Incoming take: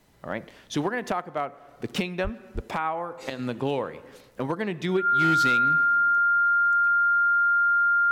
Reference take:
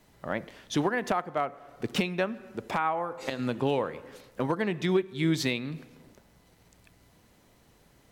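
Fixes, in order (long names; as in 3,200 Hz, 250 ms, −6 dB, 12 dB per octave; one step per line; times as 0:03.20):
clipped peaks rebuilt −16 dBFS
notch filter 1,400 Hz, Q 30
0:02.23–0:02.35: high-pass filter 140 Hz 24 dB per octave
0:02.54–0:02.66: high-pass filter 140 Hz 24 dB per octave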